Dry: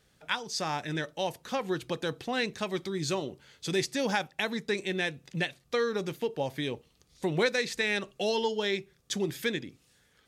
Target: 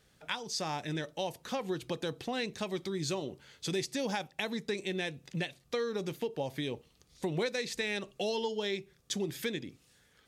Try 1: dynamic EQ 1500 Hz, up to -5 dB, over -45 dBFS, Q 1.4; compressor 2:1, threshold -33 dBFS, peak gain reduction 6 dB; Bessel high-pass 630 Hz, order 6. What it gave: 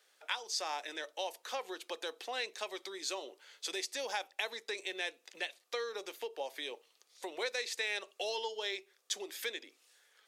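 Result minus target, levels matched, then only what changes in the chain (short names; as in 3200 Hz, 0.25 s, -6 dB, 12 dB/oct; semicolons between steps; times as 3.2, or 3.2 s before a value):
500 Hz band -3.0 dB
remove: Bessel high-pass 630 Hz, order 6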